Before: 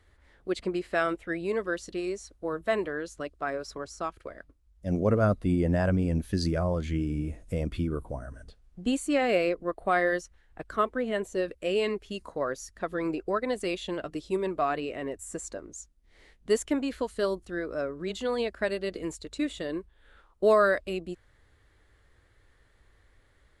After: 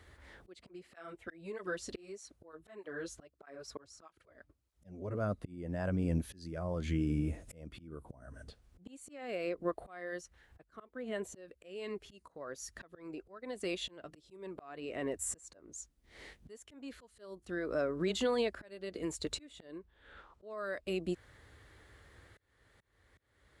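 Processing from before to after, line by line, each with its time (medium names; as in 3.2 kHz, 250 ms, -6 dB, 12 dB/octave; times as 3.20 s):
0.65–5.15 s: cancelling through-zero flanger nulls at 1.6 Hz, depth 6.3 ms
19.78–20.58 s: distance through air 73 m
whole clip: compression 3:1, threshold -37 dBFS; slow attack 690 ms; high-pass 64 Hz; trim +6 dB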